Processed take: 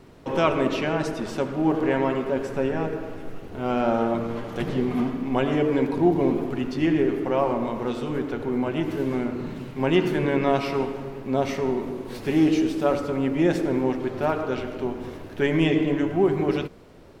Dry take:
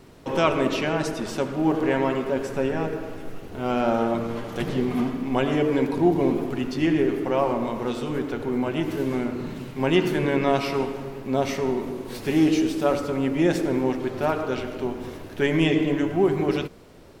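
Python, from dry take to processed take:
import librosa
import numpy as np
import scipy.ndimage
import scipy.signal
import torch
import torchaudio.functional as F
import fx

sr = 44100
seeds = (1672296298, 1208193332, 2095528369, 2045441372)

y = fx.high_shelf(x, sr, hz=4100.0, db=-6.5)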